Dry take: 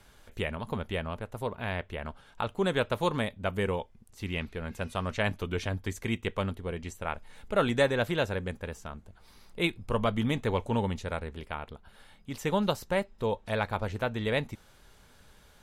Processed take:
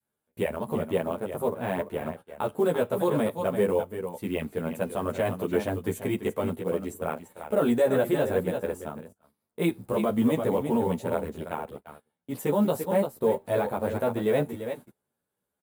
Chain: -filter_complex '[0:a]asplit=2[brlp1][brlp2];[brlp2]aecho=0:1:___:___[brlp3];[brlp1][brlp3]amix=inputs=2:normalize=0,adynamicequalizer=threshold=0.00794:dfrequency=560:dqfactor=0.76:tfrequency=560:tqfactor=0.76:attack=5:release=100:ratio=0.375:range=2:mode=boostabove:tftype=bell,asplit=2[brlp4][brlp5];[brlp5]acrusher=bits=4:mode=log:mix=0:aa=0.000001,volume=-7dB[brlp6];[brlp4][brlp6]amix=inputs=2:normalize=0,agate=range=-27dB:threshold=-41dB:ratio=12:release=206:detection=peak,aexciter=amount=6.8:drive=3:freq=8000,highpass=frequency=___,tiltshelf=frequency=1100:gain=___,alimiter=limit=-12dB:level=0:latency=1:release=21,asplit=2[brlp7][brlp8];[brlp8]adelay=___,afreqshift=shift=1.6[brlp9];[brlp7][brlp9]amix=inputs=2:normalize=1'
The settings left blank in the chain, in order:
341, 0.299, 180, 7, 11.4